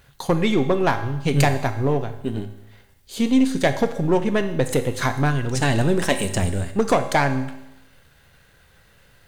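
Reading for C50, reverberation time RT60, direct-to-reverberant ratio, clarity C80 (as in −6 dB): 11.0 dB, 0.90 s, 7.0 dB, 13.0 dB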